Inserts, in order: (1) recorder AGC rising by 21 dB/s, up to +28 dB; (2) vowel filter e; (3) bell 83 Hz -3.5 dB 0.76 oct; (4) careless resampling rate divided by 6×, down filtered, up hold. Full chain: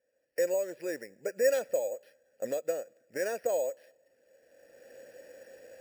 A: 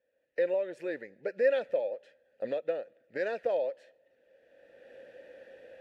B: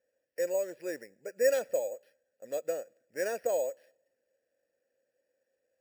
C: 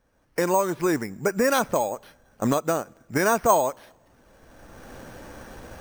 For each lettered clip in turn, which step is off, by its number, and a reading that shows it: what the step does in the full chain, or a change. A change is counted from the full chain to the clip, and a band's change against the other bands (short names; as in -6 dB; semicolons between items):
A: 4, 4 kHz band -3.0 dB; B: 1, momentary loudness spread change -6 LU; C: 2, 1 kHz band +10.0 dB